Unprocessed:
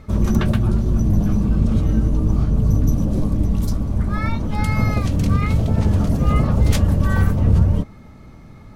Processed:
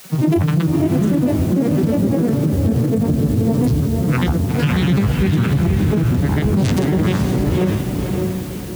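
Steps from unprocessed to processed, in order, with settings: vocoder on a gliding note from F3, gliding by -12 st; bell 660 Hz -7.5 dB 0.54 oct; grains, pitch spread up and down by 12 st; high shelf 2300 Hz +7.5 dB; in parallel at +1 dB: vocal rider 2 s; on the sum: requantised 8-bit, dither triangular; HPF 230 Hz 6 dB/oct; on a send: diffused feedback echo 0.527 s, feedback 45%, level -5 dB; on the sum: maximiser +15 dB; gain -7.5 dB

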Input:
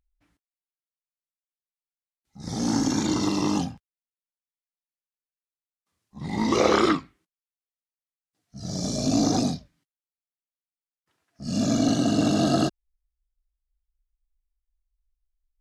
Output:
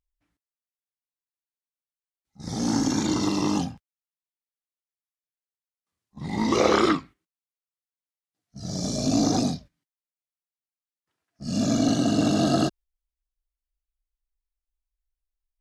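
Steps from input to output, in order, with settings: gate -43 dBFS, range -8 dB

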